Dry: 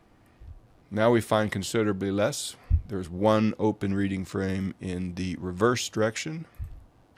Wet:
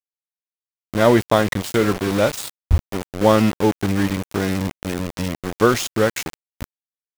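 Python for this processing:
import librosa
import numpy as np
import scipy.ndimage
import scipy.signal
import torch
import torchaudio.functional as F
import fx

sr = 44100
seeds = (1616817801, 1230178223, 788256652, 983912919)

y = fx.room_flutter(x, sr, wall_m=10.0, rt60_s=0.26, at=(1.63, 2.09))
y = np.where(np.abs(y) >= 10.0 ** (-28.5 / 20.0), y, 0.0)
y = y * 10.0 ** (7.5 / 20.0)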